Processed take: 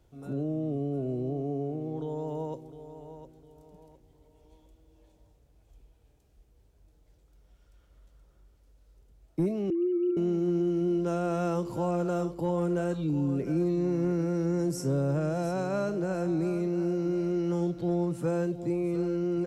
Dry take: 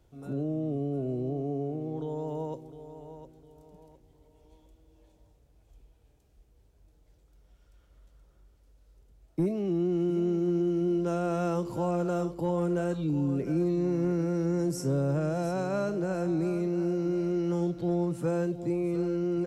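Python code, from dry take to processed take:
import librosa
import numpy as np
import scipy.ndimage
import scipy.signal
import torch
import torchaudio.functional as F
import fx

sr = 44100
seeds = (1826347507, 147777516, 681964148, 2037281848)

y = fx.sine_speech(x, sr, at=(9.7, 10.17))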